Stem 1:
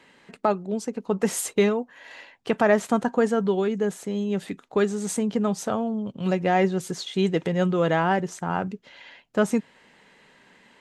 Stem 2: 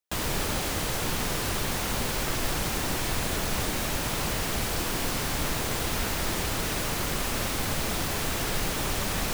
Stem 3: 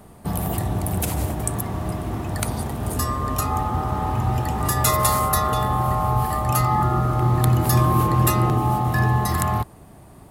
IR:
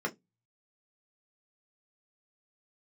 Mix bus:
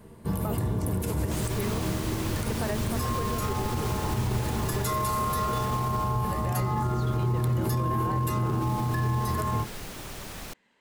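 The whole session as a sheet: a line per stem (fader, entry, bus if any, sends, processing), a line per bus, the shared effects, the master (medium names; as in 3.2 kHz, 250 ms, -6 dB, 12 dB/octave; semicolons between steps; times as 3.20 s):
-13.0 dB, 0.00 s, no send, none
5.73 s -6.5 dB -> 6.34 s -18 dB -> 8.30 s -18 dB -> 8.74 s -11 dB, 1.20 s, no send, none
-5.5 dB, 0.00 s, send -6.5 dB, modulation noise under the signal 34 dB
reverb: on, RT60 0.15 s, pre-delay 3 ms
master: peak limiter -19 dBFS, peak gain reduction 10 dB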